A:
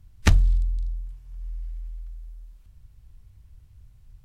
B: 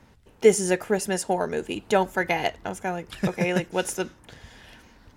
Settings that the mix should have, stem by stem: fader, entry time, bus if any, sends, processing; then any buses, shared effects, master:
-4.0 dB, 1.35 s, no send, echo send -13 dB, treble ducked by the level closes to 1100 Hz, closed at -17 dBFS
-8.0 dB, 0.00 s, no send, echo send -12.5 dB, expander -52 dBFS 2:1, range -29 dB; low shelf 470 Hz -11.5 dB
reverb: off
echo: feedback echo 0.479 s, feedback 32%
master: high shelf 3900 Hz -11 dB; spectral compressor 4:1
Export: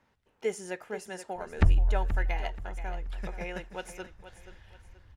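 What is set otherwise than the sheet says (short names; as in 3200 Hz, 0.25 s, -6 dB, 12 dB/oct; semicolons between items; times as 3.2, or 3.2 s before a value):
stem B: missing expander -52 dBFS 2:1, range -29 dB; master: missing spectral compressor 4:1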